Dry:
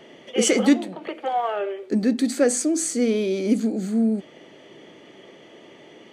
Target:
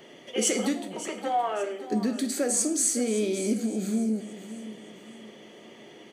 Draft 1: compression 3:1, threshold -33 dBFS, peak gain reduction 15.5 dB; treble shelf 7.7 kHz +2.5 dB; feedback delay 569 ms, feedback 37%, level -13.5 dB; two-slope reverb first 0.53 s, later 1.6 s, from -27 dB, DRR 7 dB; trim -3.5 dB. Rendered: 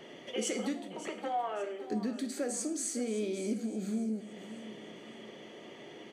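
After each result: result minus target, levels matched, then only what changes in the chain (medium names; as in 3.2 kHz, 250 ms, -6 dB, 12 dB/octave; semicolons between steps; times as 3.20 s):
compression: peak gain reduction +7.5 dB; 8 kHz band -3.0 dB
change: compression 3:1, threshold -22 dBFS, peak gain reduction 8.5 dB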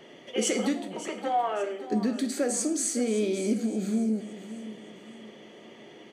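8 kHz band -3.5 dB
change: treble shelf 7.7 kHz +12 dB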